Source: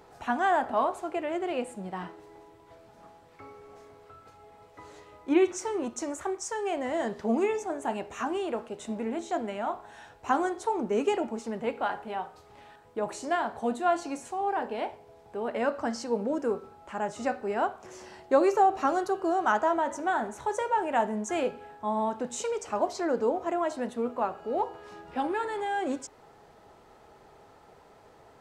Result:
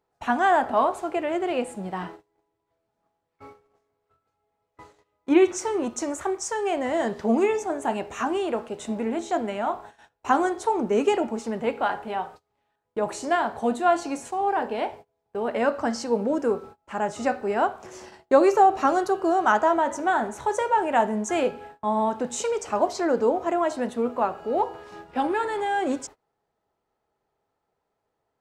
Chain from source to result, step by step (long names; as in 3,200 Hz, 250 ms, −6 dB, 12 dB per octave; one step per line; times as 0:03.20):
noise gate −46 dBFS, range −28 dB
level +5 dB